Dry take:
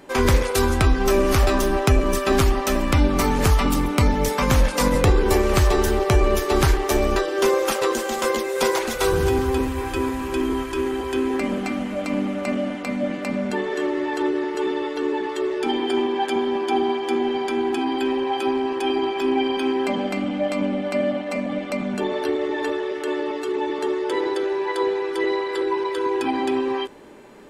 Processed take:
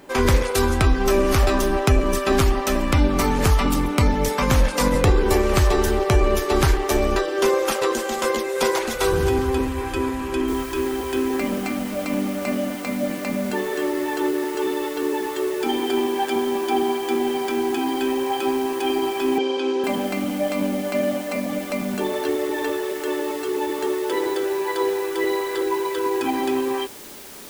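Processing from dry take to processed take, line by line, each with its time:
10.48 s: noise floor step -64 dB -41 dB
19.38–19.84 s: cabinet simulation 300–6300 Hz, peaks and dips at 490 Hz +10 dB, 740 Hz -5 dB, 1.1 kHz -3 dB, 1.9 kHz -9 dB

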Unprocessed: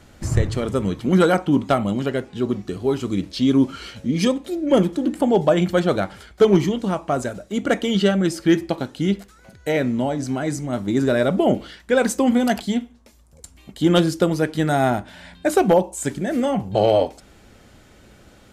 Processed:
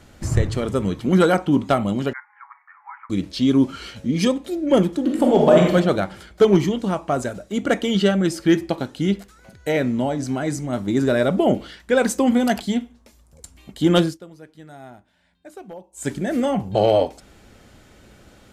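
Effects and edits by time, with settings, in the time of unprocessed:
2.13–3.10 s: Chebyshev band-pass 850–2200 Hz, order 5
5.03–5.73 s: reverb throw, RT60 0.92 s, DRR -0.5 dB
14.02–16.09 s: dip -22.5 dB, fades 0.16 s

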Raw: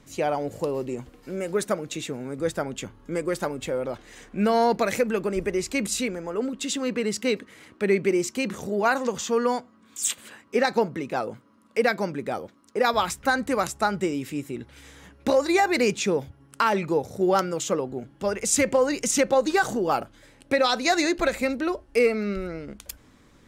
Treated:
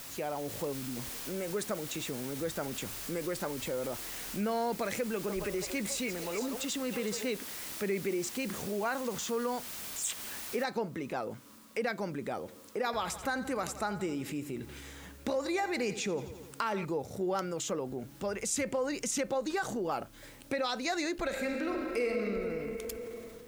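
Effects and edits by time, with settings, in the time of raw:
0.72–0.97 s: time-frequency box 290–8700 Hz -20 dB
5.13–7.29 s: repeats whose band climbs or falls 154 ms, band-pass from 790 Hz, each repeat 1.4 oct, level -0.5 dB
10.64 s: noise floor step -40 dB -60 dB
12.38–16.85 s: feedback delay 86 ms, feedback 54%, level -17 dB
21.26–22.20 s: reverb throw, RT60 2.7 s, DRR 1 dB
whole clip: level rider gain up to 5 dB; transient shaper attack -2 dB, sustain +3 dB; compression 2:1, threshold -32 dBFS; trim -5.5 dB

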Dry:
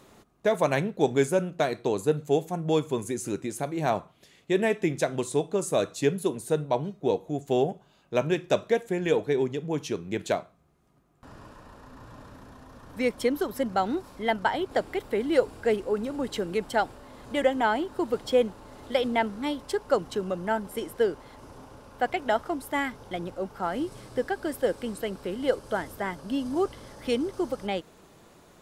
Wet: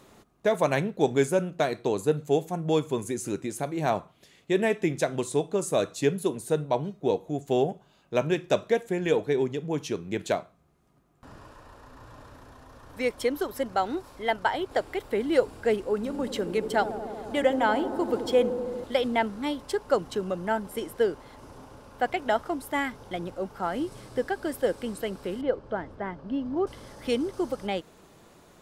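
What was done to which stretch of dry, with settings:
11.38–15.12 s: peaking EQ 200 Hz -8.5 dB
15.96–18.84 s: feedback echo behind a low-pass 79 ms, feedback 84%, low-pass 700 Hz, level -9 dB
25.41–26.67 s: tape spacing loss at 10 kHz 32 dB

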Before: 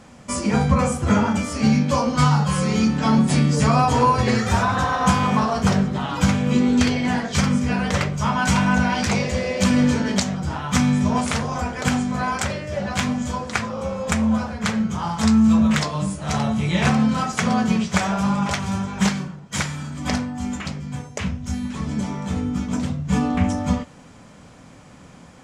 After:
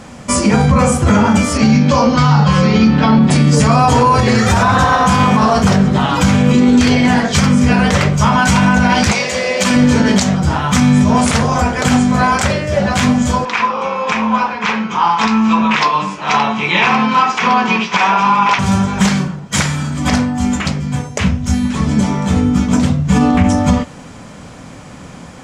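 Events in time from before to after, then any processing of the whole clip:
1.57–3.30 s: low-pass 7.4 kHz -> 4.1 kHz 24 dB/octave
9.11–9.75 s: high-pass 1.1 kHz -> 440 Hz 6 dB/octave
13.45–18.59 s: cabinet simulation 370–5200 Hz, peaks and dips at 600 Hz -9 dB, 990 Hz +9 dB, 2.5 kHz +8 dB, 4.4 kHz -4 dB
whole clip: loudness maximiser +13 dB; trim -1.5 dB

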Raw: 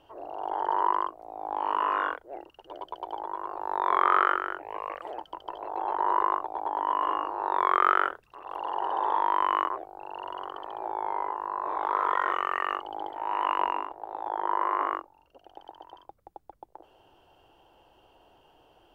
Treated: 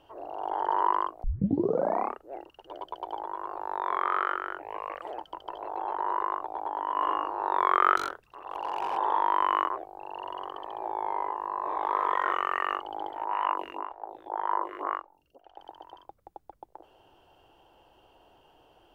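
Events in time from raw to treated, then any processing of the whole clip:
1.24 s: tape start 1.10 s
3.18–6.96 s: compression 1.5:1, threshold -31 dBFS
7.97–8.97 s: overload inside the chain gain 25.5 dB
9.83–12.24 s: band-stop 1.4 kHz, Q 5.9
13.25–15.59 s: lamp-driven phase shifter 1.9 Hz

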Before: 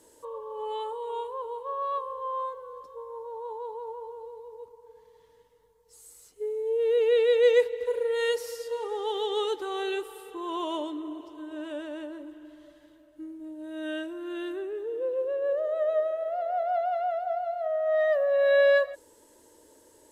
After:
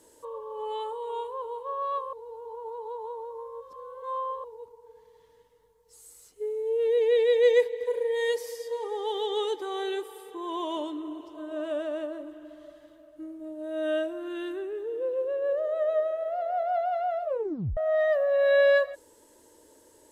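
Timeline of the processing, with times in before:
2.13–4.44 s: reverse
6.87–10.77 s: comb of notches 1.4 kHz
11.34–14.28 s: small resonant body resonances 640/1200 Hz, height 12 dB
17.21 s: tape stop 0.56 s

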